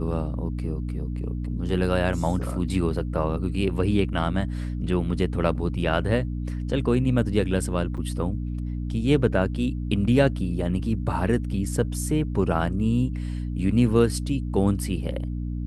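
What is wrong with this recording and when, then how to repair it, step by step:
mains hum 60 Hz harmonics 5 −29 dBFS
0:07.97–0:07.98: drop-out 7.1 ms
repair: hum removal 60 Hz, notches 5
repair the gap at 0:07.97, 7.1 ms

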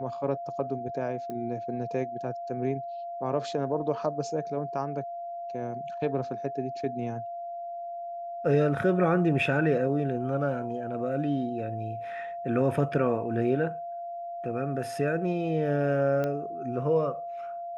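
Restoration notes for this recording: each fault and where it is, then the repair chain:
whistle 690 Hz −34 dBFS
0:01.30: click −25 dBFS
0:16.24: click −19 dBFS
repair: click removal
notch filter 690 Hz, Q 30

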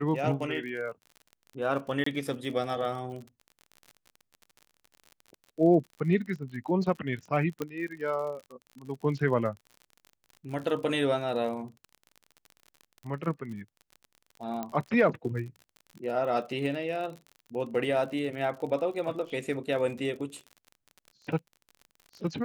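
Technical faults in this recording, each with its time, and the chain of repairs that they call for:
surface crackle 45 per second −38 dBFS
0:02.04–0:02.06: drop-out 24 ms
0:07.62: click −18 dBFS
0:14.63: click −20 dBFS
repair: click removal
repair the gap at 0:02.04, 24 ms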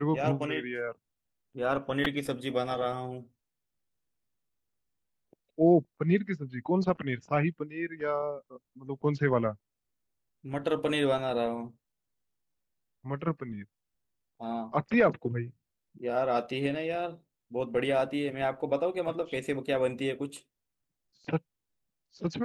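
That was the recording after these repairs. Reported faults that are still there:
none of them is left

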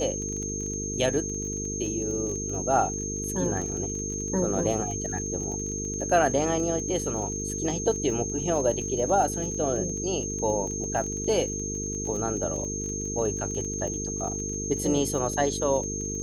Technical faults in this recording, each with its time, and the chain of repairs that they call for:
mains buzz 50 Hz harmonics 9 −34 dBFS
surface crackle 25 per second −33 dBFS
whistle 6,400 Hz −32 dBFS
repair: click removal
hum removal 50 Hz, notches 9
notch filter 6,400 Hz, Q 30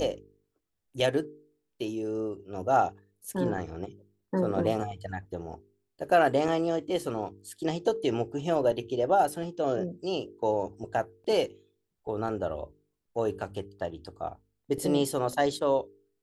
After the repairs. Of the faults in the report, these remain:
none of them is left

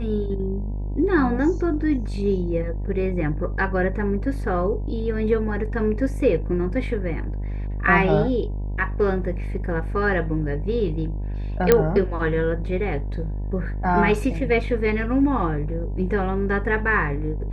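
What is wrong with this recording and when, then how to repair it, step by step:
mains buzz 50 Hz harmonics 20 −27 dBFS
0:11.72: click −2 dBFS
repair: click removal
hum removal 50 Hz, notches 20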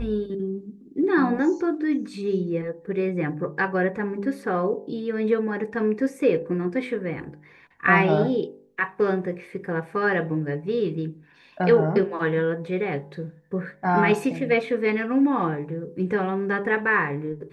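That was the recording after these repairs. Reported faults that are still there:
0:11.72: click

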